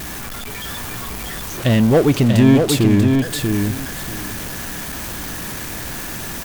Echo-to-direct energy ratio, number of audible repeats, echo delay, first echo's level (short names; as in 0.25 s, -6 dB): -4.5 dB, 2, 0.64 s, -4.5 dB